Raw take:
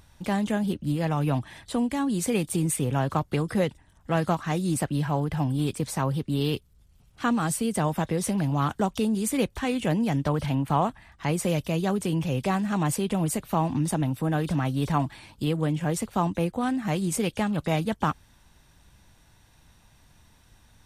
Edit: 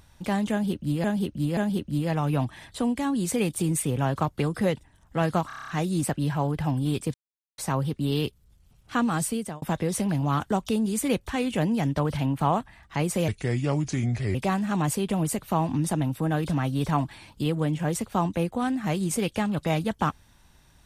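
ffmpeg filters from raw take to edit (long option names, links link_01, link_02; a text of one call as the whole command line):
ffmpeg -i in.wav -filter_complex "[0:a]asplit=14[link_01][link_02][link_03][link_04][link_05][link_06][link_07][link_08][link_09][link_10][link_11][link_12][link_13][link_14];[link_01]atrim=end=1.042[link_15];[link_02]atrim=start=0.508:end=1.042[link_16];[link_03]atrim=start=0.508:end=4.442[link_17];[link_04]atrim=start=4.408:end=4.442[link_18];[link_05]atrim=start=4.408:end=4.442[link_19];[link_06]atrim=start=4.408:end=4.442[link_20];[link_07]atrim=start=4.408:end=4.442[link_21];[link_08]atrim=start=4.408:end=4.442[link_22];[link_09]atrim=start=4.408:end=4.442[link_23];[link_10]atrim=start=4.408:end=5.87,asetpts=PTS-STARTPTS,afade=type=out:start_time=1.458:duration=0.004:curve=hsin,apad=pad_dur=0.44[link_24];[link_11]atrim=start=5.87:end=7.91,asetpts=PTS-STARTPTS,afade=type=in:duration=0.004:curve=hsin,afade=type=out:start_time=1.71:duration=0.33[link_25];[link_12]atrim=start=7.91:end=11.574,asetpts=PTS-STARTPTS,afade=type=in:duration=0.004:curve=hsin[link_26];[link_13]atrim=start=11.57:end=12.36,asetpts=PTS-STARTPTS,asetrate=32634,aresample=44100[link_27];[link_14]atrim=start=12.356[link_28];[link_15][link_16]acrossfade=duration=0.004:curve1=hsin:curve2=hsin[link_29];[link_29][link_17]acrossfade=duration=0.004:curve1=hsin:curve2=hsin[link_30];[link_30][link_18]acrossfade=duration=0.004:curve1=hsin:curve2=hsin[link_31];[link_31][link_19]acrossfade=duration=0.004:curve1=hsin:curve2=hsin[link_32];[link_32][link_20]acrossfade=duration=0.004:curve1=hsin:curve2=hsin[link_33];[link_33][link_21]acrossfade=duration=0.004:curve1=hsin:curve2=hsin[link_34];[link_34][link_22]acrossfade=duration=0.004:curve1=hsin:curve2=hsin[link_35];[link_35][link_23]acrossfade=duration=0.004:curve1=hsin:curve2=hsin[link_36];[link_24][link_25][link_26]concat=n=3:v=0:a=1[link_37];[link_36][link_37]acrossfade=duration=0.004:curve1=hsin:curve2=hsin[link_38];[link_38][link_27]acrossfade=duration=0.004:curve1=hsin:curve2=hsin[link_39];[link_39][link_28]acrossfade=duration=0.004:curve1=hsin:curve2=hsin" out.wav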